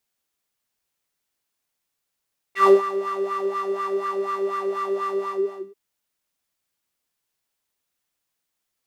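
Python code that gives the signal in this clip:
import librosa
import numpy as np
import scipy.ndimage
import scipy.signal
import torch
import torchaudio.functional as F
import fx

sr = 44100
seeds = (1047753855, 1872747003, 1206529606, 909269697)

y = fx.sub_patch_wobble(sr, seeds[0], note=67, wave='square', wave2='saw', interval_st=0, level2_db=-17.0, sub_db=-13, noise_db=-4.5, kind='bandpass', cutoff_hz=390.0, q=4.3, env_oct=2.5, env_decay_s=0.05, env_sustain_pct=40, attack_ms=124.0, decay_s=0.15, sustain_db=-14.5, release_s=0.53, note_s=2.66, lfo_hz=4.1, wobble_oct=0.7)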